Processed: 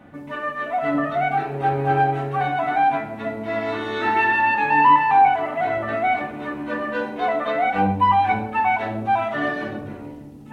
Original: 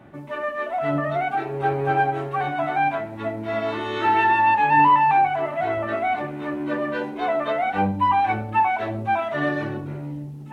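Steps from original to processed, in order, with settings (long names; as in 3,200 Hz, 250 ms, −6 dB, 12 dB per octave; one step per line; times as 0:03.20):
rectangular room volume 3,300 cubic metres, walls furnished, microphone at 1.9 metres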